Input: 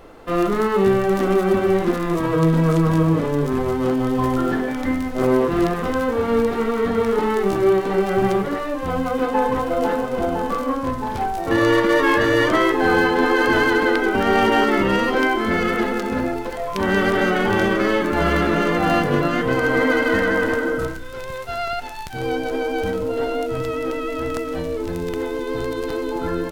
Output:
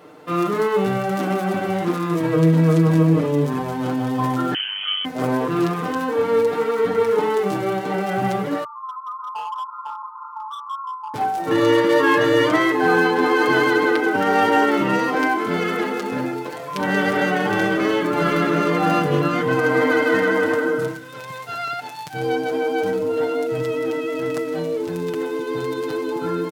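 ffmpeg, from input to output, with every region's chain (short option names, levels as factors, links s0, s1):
-filter_complex "[0:a]asettb=1/sr,asplit=3[s0][s1][s2];[s0]atrim=end=4.544[s3];[s1]atrim=start=4.54:end=5.05,asetpts=PTS-STARTPTS,afade=t=in:d=0.004:c=qsin,afade=t=out:st=0.506:d=0.004:c=qsin,lowpass=f=2800:t=q:w=0.5098,lowpass=f=2800:t=q:w=0.6013,lowpass=f=2800:t=q:w=0.9,lowpass=f=2800:t=q:w=2.563,afreqshift=-3300,tremolo=f=99:d=0.919[s4];[s2]atrim=start=5.046[s5];[s3][s4]acrossfade=d=0.004:c1=hsin:c2=qsin[s6];[s6][s5]acrossfade=d=0.004:c1=qsin:c2=hsin,asettb=1/sr,asplit=3[s7][s8][s9];[s7]atrim=end=8.644[s10];[s8]atrim=start=8.64:end=11.14,asetpts=PTS-STARTPTS,afade=t=in:d=0.004:c=qsin,afade=t=out:st=2.496:d=0.004:c=qsin,asuperpass=centerf=1100:order=20:qfactor=2.1,asoftclip=type=hard:threshold=0.0596[s11];[s9]atrim=start=11.136[s12];[s10][s11]acrossfade=d=0.004:c1=hsin:c2=qsin[s13];[s13][s12]acrossfade=d=0.004:c1=qsin:c2=hsin,highpass=f=110:w=0.5412,highpass=f=110:w=1.3066,aecho=1:1:6.6:0.67,volume=0.794"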